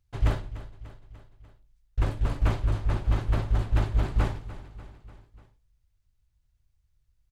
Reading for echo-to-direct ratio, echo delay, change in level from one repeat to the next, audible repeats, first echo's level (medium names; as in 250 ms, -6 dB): -13.5 dB, 295 ms, -4.5 dB, 4, -15.5 dB